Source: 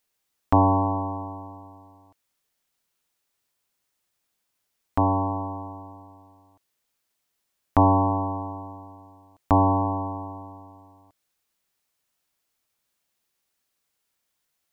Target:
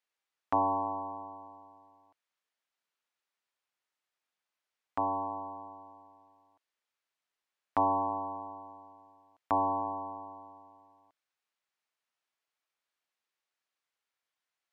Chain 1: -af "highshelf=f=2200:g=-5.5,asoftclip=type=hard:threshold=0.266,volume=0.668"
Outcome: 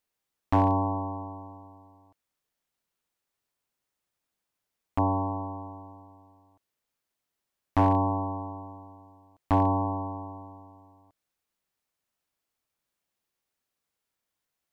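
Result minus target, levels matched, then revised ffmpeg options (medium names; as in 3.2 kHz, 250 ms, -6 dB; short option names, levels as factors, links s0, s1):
2 kHz band +3.0 dB
-af "bandpass=f=2000:t=q:w=0.5:csg=0,highshelf=f=2200:g=-5.5,asoftclip=type=hard:threshold=0.266,volume=0.668"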